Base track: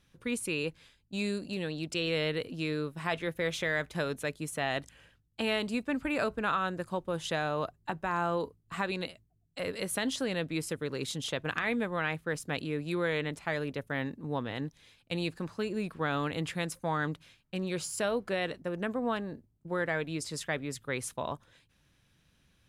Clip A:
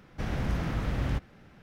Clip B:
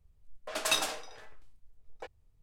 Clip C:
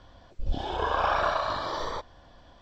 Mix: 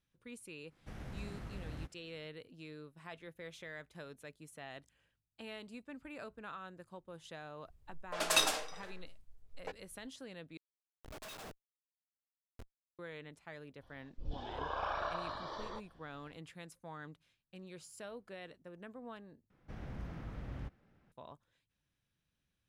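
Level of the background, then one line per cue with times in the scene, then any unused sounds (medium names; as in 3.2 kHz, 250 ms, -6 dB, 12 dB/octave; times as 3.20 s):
base track -17 dB
0.68 s: add A -15.5 dB, fades 0.05 s + CVSD coder 64 kbps
7.65 s: add B -0.5 dB
10.57 s: replace with B -10 dB + Schmitt trigger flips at -34.5 dBFS
13.79 s: add C -12.5 dB, fades 0.05 s + low-pass 6.6 kHz
19.50 s: replace with A -14.5 dB + treble shelf 2.5 kHz -6.5 dB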